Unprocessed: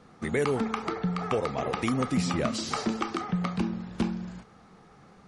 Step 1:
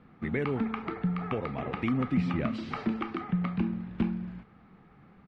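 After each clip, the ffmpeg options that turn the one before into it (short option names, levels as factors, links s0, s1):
-af "firequalizer=gain_entry='entry(270,0);entry(460,-7);entry(2300,-2);entry(6500,-30)':delay=0.05:min_phase=1"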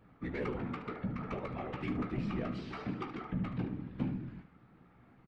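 -af "asoftclip=type=tanh:threshold=0.0631,afftfilt=real='hypot(re,im)*cos(2*PI*random(0))':imag='hypot(re,im)*sin(2*PI*random(1))':win_size=512:overlap=0.75,aecho=1:1:16|74:0.398|0.282"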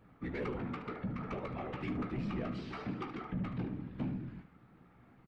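-af "asoftclip=type=tanh:threshold=0.0376"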